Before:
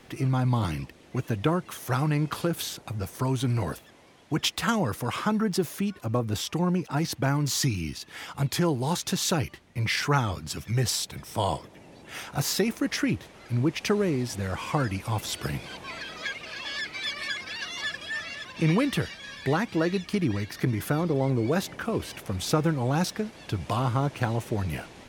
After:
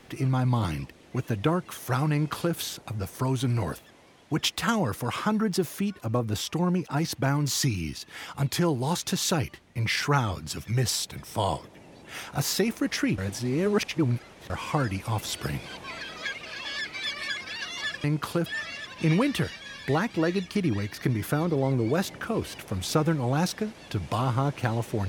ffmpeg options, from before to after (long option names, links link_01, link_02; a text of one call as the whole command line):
ffmpeg -i in.wav -filter_complex "[0:a]asplit=5[link_01][link_02][link_03][link_04][link_05];[link_01]atrim=end=13.182[link_06];[link_02]atrim=start=13.178:end=14.502,asetpts=PTS-STARTPTS,areverse[link_07];[link_03]atrim=start=14.498:end=18.042[link_08];[link_04]atrim=start=2.128:end=2.552[link_09];[link_05]atrim=start=18.038[link_10];[link_06][link_07]acrossfade=duration=0.004:curve1=hsin:curve2=hsin[link_11];[link_11][link_08]acrossfade=duration=0.004:curve1=hsin:curve2=hsin[link_12];[link_12][link_09]acrossfade=duration=0.004:curve1=hsin:curve2=hsin[link_13];[link_13][link_10]acrossfade=duration=0.004:curve1=hsin:curve2=hsin" out.wav